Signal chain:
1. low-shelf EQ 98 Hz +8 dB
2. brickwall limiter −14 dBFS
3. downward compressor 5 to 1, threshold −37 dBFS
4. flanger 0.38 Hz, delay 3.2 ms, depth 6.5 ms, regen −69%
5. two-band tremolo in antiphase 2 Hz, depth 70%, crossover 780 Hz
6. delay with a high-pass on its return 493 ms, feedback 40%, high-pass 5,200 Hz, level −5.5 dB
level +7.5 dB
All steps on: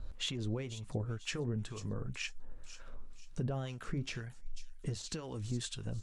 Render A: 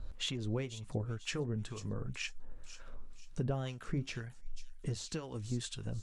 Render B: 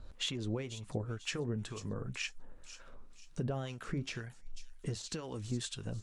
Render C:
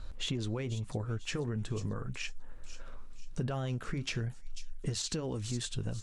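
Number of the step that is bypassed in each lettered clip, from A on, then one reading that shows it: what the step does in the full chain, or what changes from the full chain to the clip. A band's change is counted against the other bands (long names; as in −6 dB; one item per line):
2, change in crest factor +1.5 dB
1, 125 Hz band −2.5 dB
5, change in integrated loudness +3.0 LU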